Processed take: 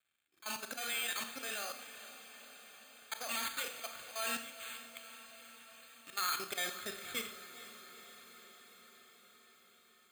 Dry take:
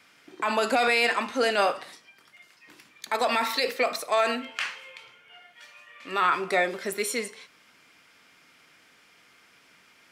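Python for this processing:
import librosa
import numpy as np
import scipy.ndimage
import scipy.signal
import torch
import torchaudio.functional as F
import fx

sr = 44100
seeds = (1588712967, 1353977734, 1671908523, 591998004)

p1 = np.sign(x) * np.maximum(np.abs(x) - 10.0 ** (-55.5 / 20.0), 0.0)
p2 = fx.auto_swell(p1, sr, attack_ms=126.0)
p3 = np.repeat(p2[::8], 8)[:len(p2)]
p4 = fx.notch_comb(p3, sr, f0_hz=980.0)
p5 = fx.level_steps(p4, sr, step_db=16)
p6 = fx.tone_stack(p5, sr, knobs='5-5-5')
p7 = fx.rev_schroeder(p6, sr, rt60_s=0.63, comb_ms=27, drr_db=8.0)
p8 = fx.rider(p7, sr, range_db=4, speed_s=2.0)
p9 = p8 + fx.echo_diffused(p8, sr, ms=456, feedback_pct=71, wet_db=-13.5, dry=0)
y = p9 * librosa.db_to_amplitude(5.5)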